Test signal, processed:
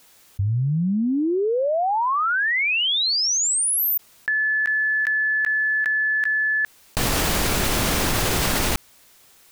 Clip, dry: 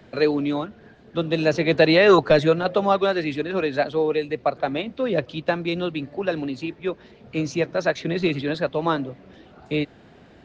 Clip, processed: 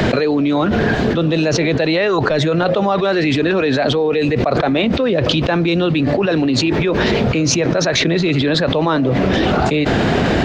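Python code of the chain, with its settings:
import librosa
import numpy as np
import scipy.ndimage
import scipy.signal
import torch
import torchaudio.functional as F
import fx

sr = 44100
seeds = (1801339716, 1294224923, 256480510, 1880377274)

y = fx.env_flatten(x, sr, amount_pct=100)
y = y * librosa.db_to_amplitude(-4.5)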